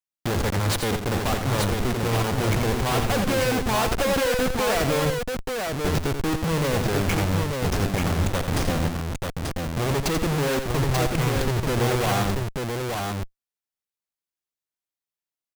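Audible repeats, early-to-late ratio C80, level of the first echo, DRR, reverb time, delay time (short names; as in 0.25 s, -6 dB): 2, none, -7.5 dB, none, none, 86 ms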